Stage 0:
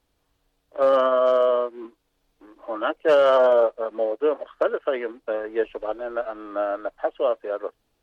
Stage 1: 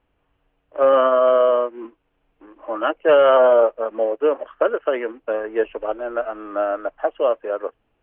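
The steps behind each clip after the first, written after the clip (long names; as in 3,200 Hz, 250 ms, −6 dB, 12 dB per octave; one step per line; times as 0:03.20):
elliptic low-pass filter 2,900 Hz, stop band 60 dB
level +4 dB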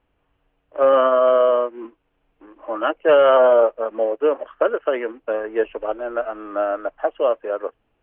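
no processing that can be heard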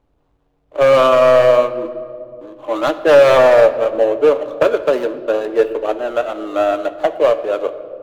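running median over 25 samples
hard clipping −12.5 dBFS, distortion −16 dB
on a send at −8 dB: convolution reverb RT60 2.2 s, pre-delay 7 ms
on the sum: level +6 dB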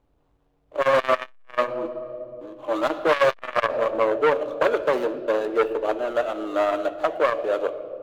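saturating transformer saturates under 1,300 Hz
level −3.5 dB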